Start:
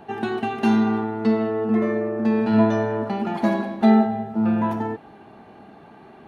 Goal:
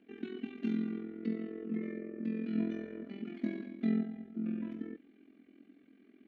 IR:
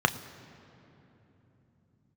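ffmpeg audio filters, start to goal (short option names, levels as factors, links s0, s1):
-filter_complex "[0:a]asplit=3[s0][s1][s2];[s0]bandpass=f=270:t=q:w=8,volume=1[s3];[s1]bandpass=f=2290:t=q:w=8,volume=0.501[s4];[s2]bandpass=f=3010:t=q:w=8,volume=0.355[s5];[s3][s4][s5]amix=inputs=3:normalize=0,tremolo=f=43:d=0.75,equalizer=f=130:t=o:w=0.9:g=-6.5,asplit=2[s6][s7];[1:a]atrim=start_sample=2205,atrim=end_sample=3528,asetrate=48510,aresample=44100[s8];[s7][s8]afir=irnorm=-1:irlink=0,volume=0.0944[s9];[s6][s9]amix=inputs=2:normalize=0"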